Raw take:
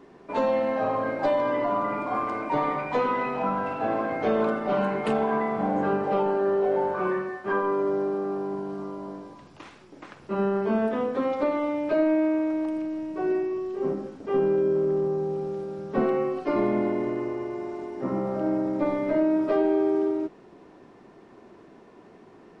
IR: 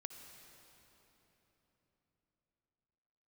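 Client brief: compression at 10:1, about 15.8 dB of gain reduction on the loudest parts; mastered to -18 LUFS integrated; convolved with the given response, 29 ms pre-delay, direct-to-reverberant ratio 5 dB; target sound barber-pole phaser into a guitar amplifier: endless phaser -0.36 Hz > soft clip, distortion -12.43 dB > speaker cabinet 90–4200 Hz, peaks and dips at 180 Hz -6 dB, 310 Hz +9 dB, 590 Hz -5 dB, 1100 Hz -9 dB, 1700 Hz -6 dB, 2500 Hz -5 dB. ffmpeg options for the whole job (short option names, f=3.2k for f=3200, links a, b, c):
-filter_complex "[0:a]acompressor=threshold=-36dB:ratio=10,asplit=2[a][b];[1:a]atrim=start_sample=2205,adelay=29[c];[b][c]afir=irnorm=-1:irlink=0,volume=-1dB[d];[a][d]amix=inputs=2:normalize=0,asplit=2[e][f];[f]afreqshift=-0.36[g];[e][g]amix=inputs=2:normalize=1,asoftclip=threshold=-38.5dB,highpass=90,equalizer=f=180:t=q:w=4:g=-6,equalizer=f=310:t=q:w=4:g=9,equalizer=f=590:t=q:w=4:g=-5,equalizer=f=1.1k:t=q:w=4:g=-9,equalizer=f=1.7k:t=q:w=4:g=-6,equalizer=f=2.5k:t=q:w=4:g=-5,lowpass=f=4.2k:w=0.5412,lowpass=f=4.2k:w=1.3066,volume=24dB"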